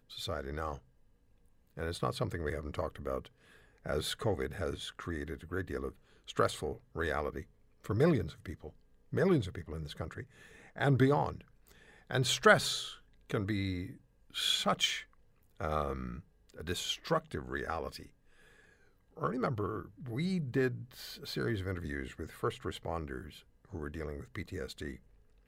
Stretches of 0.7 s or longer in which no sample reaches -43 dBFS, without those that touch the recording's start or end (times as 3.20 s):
0.78–1.77 s
18.06–19.17 s